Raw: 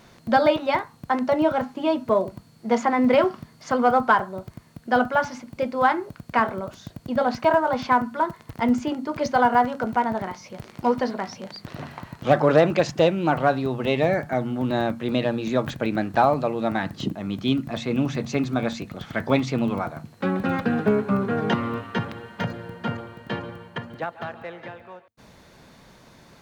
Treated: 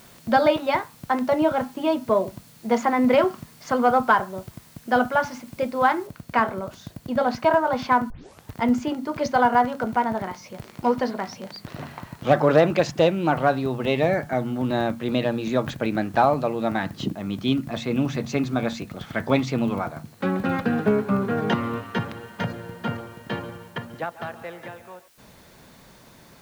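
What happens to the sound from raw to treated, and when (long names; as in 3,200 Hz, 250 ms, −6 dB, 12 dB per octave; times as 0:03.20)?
0:06.07: noise floor change −53 dB −59 dB
0:08.10: tape start 0.42 s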